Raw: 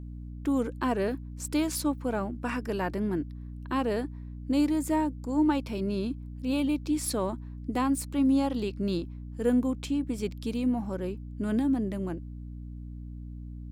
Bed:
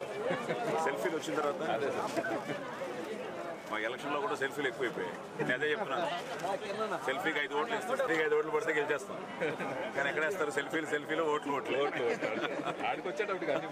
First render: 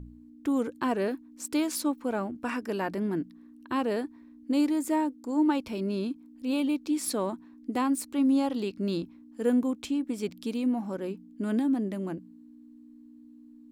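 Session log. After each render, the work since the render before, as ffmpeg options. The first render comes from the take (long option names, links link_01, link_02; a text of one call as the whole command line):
ffmpeg -i in.wav -af "bandreject=frequency=60:width_type=h:width=4,bandreject=frequency=120:width_type=h:width=4,bandreject=frequency=180:width_type=h:width=4" out.wav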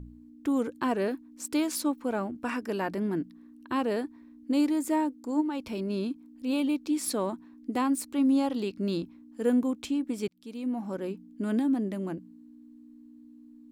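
ffmpeg -i in.wav -filter_complex "[0:a]asplit=3[link_01][link_02][link_03];[link_01]afade=type=out:start_time=5.4:duration=0.02[link_04];[link_02]acompressor=threshold=-28dB:ratio=6:attack=3.2:release=140:knee=1:detection=peak,afade=type=in:start_time=5.4:duration=0.02,afade=type=out:start_time=5.89:duration=0.02[link_05];[link_03]afade=type=in:start_time=5.89:duration=0.02[link_06];[link_04][link_05][link_06]amix=inputs=3:normalize=0,asplit=2[link_07][link_08];[link_07]atrim=end=10.28,asetpts=PTS-STARTPTS,afade=type=out:start_time=10.276:duration=0.004:curve=hsin[link_09];[link_08]atrim=start=10.28,asetpts=PTS-STARTPTS,afade=type=in:duration=0.66[link_10];[link_09][link_10]concat=n=2:v=0:a=1" out.wav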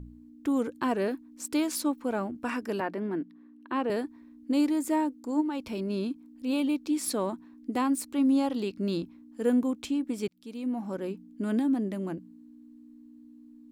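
ffmpeg -i in.wav -filter_complex "[0:a]asettb=1/sr,asplit=3[link_01][link_02][link_03];[link_01]atrim=end=2.804[link_04];[link_02]atrim=start=2.8:end=3.9,asetpts=PTS-STARTPTS,afade=type=in:duration=0.004:curve=qsin,afade=type=out:start_time=1.096:duration=0.004:curve=qsin,acrossover=split=190 3300:gain=0.141 1 0.224[link_05][link_06][link_07];[link_05][link_06][link_07]amix=inputs=3:normalize=0[link_08];[link_03]atrim=start=3.896[link_09];[link_04][link_08]acrossfade=duration=0.004:curve1=hsin:curve2=qsin[link_10];[link_10][link_09]acrossfade=duration=0.004:curve1=qsin:curve2=hsin" out.wav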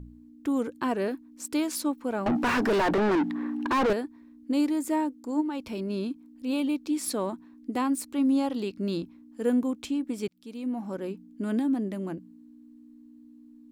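ffmpeg -i in.wav -filter_complex "[0:a]asettb=1/sr,asplit=3[link_01][link_02][link_03];[link_01]atrim=end=2.264[link_04];[link_02]atrim=start=2.26:end=3.93,asetpts=PTS-STARTPTS,afade=type=in:duration=0.004:curve=qsin,afade=type=out:start_time=1.666:duration=0.004:curve=qsin,asplit=2[link_05][link_06];[link_06]highpass=frequency=720:poles=1,volume=38dB,asoftclip=type=tanh:threshold=-16.5dB[link_07];[link_05][link_07]amix=inputs=2:normalize=0,lowpass=frequency=1600:poles=1,volume=-6dB[link_08];[link_03]atrim=start=3.926[link_09];[link_04][link_08]acrossfade=duration=0.004:curve1=hsin:curve2=qsin[link_10];[link_10][link_09]acrossfade=duration=0.004:curve1=qsin:curve2=hsin" out.wav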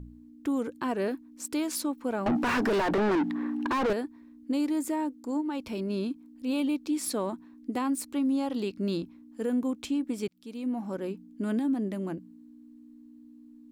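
ffmpeg -i in.wav -af "alimiter=limit=-21.5dB:level=0:latency=1:release=98" out.wav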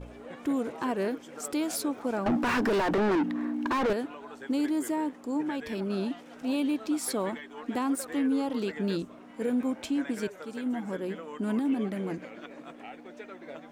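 ffmpeg -i in.wav -i bed.wav -filter_complex "[1:a]volume=-11dB[link_01];[0:a][link_01]amix=inputs=2:normalize=0" out.wav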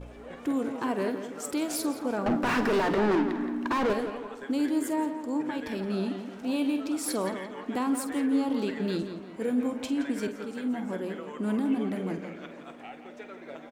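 ffmpeg -i in.wav -filter_complex "[0:a]asplit=2[link_01][link_02];[link_02]adelay=48,volume=-11.5dB[link_03];[link_01][link_03]amix=inputs=2:normalize=0,asplit=2[link_04][link_05];[link_05]adelay=171,lowpass=frequency=4000:poles=1,volume=-9dB,asplit=2[link_06][link_07];[link_07]adelay=171,lowpass=frequency=4000:poles=1,volume=0.44,asplit=2[link_08][link_09];[link_09]adelay=171,lowpass=frequency=4000:poles=1,volume=0.44,asplit=2[link_10][link_11];[link_11]adelay=171,lowpass=frequency=4000:poles=1,volume=0.44,asplit=2[link_12][link_13];[link_13]adelay=171,lowpass=frequency=4000:poles=1,volume=0.44[link_14];[link_04][link_06][link_08][link_10][link_12][link_14]amix=inputs=6:normalize=0" out.wav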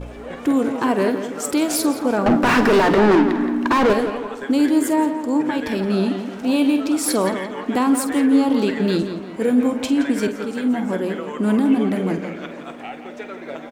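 ffmpeg -i in.wav -af "volume=10.5dB" out.wav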